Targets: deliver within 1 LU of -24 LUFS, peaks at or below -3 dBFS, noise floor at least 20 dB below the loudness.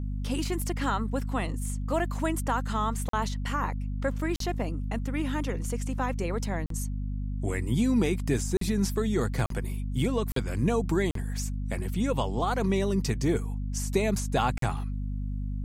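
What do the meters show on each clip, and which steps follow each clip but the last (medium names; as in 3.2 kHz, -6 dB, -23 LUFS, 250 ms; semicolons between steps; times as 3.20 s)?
dropouts 8; longest dropout 43 ms; hum 50 Hz; highest harmonic 250 Hz; hum level -29 dBFS; loudness -29.5 LUFS; peak level -12.0 dBFS; loudness target -24.0 LUFS
-> interpolate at 3.09/4.36/6.66/8.57/9.46/10.32/11.11/14.58 s, 43 ms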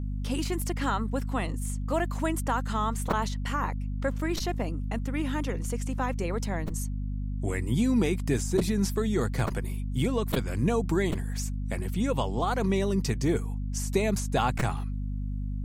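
dropouts 0; hum 50 Hz; highest harmonic 250 Hz; hum level -29 dBFS
-> hum notches 50/100/150/200/250 Hz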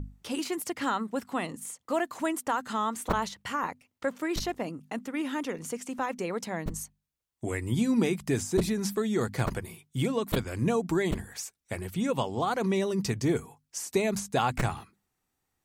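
hum not found; loudness -31.0 LUFS; peak level -11.0 dBFS; loudness target -24.0 LUFS
-> trim +7 dB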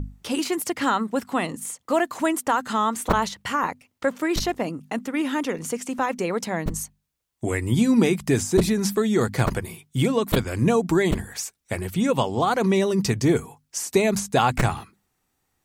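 loudness -24.0 LUFS; peak level -4.0 dBFS; noise floor -74 dBFS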